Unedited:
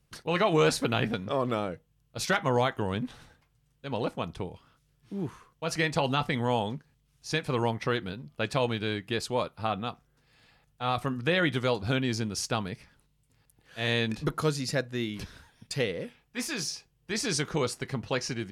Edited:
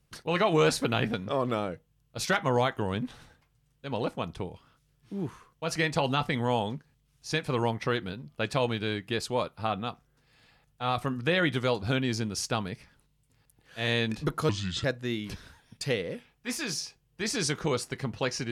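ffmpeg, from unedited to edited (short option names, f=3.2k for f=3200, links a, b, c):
-filter_complex "[0:a]asplit=3[a][b][c];[a]atrim=end=14.494[d];[b]atrim=start=14.49:end=14.74,asetpts=PTS-STARTPTS,asetrate=31311,aresample=44100,atrim=end_sample=15528,asetpts=PTS-STARTPTS[e];[c]atrim=start=14.736[f];[d][e]acrossfade=d=0.004:c1=hsin:c2=hsin[g];[g][f]acrossfade=d=0.004:c1=hsin:c2=hsin"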